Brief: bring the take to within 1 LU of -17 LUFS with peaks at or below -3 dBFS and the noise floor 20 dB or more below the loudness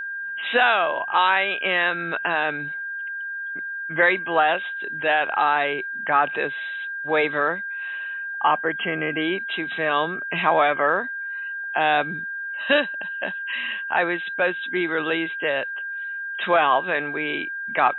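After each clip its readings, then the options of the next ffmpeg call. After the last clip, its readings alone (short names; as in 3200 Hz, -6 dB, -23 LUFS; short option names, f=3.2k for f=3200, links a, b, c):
steady tone 1600 Hz; tone level -28 dBFS; loudness -23.0 LUFS; peak -5.0 dBFS; loudness target -17.0 LUFS
-> -af "bandreject=f=1.6k:w=30"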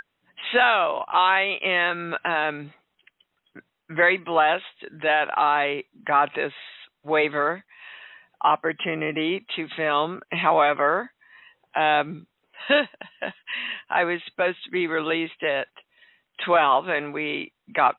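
steady tone none; loudness -23.0 LUFS; peak -5.5 dBFS; loudness target -17.0 LUFS
-> -af "volume=6dB,alimiter=limit=-3dB:level=0:latency=1"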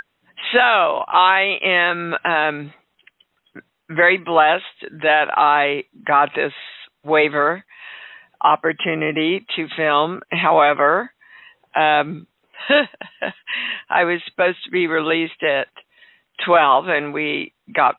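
loudness -17.5 LUFS; peak -3.0 dBFS; noise floor -72 dBFS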